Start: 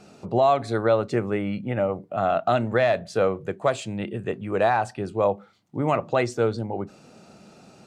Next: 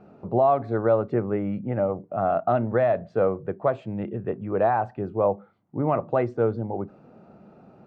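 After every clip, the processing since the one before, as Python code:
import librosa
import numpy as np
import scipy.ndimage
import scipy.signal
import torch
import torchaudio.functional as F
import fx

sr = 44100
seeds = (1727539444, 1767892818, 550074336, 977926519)

y = scipy.signal.sosfilt(scipy.signal.butter(2, 1200.0, 'lowpass', fs=sr, output='sos'), x)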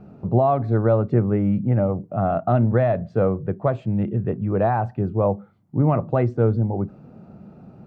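y = fx.bass_treble(x, sr, bass_db=12, treble_db=3)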